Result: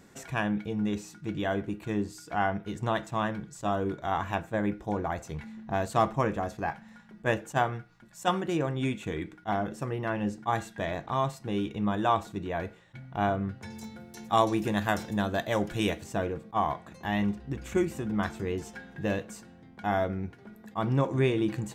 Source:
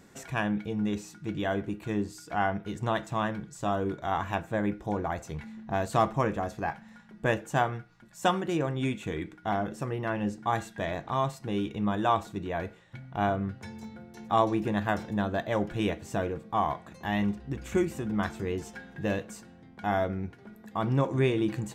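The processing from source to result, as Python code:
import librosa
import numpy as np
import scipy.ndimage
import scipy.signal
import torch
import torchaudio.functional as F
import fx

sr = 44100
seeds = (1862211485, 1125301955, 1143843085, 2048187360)

y = fx.high_shelf(x, sr, hz=4000.0, db=12.0, at=(13.7, 16.04))
y = fx.attack_slew(y, sr, db_per_s=520.0)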